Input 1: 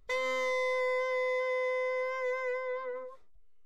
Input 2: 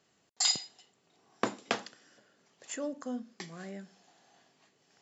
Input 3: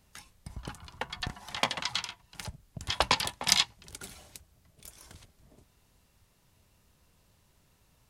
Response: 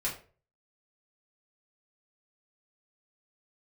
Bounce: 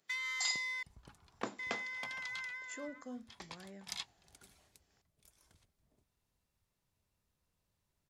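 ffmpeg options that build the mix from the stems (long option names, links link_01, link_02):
-filter_complex "[0:a]highpass=frequency=1500:width=0.5412,highpass=frequency=1500:width=1.3066,volume=-2dB,asplit=3[link_01][link_02][link_03];[link_01]atrim=end=0.83,asetpts=PTS-STARTPTS,afade=type=out:start_time=0.826:duration=0.004:curve=hsin[link_04];[link_02]atrim=start=0.83:end=1.59,asetpts=PTS-STARTPTS,volume=0[link_05];[link_03]atrim=start=1.59,asetpts=PTS-STARTPTS,afade=type=in:duration=0.004:curve=hsin[link_06];[link_04][link_05][link_06]concat=n=3:v=0:a=1[link_07];[1:a]volume=-9dB,asplit=2[link_08][link_09];[2:a]adelay=400,volume=-17dB[link_10];[link_09]apad=whole_len=379070[link_11];[link_10][link_11]sidechaincompress=threshold=-60dB:ratio=8:attack=16:release=204[link_12];[link_07][link_08][link_12]amix=inputs=3:normalize=0,bandreject=frequency=2900:width=27"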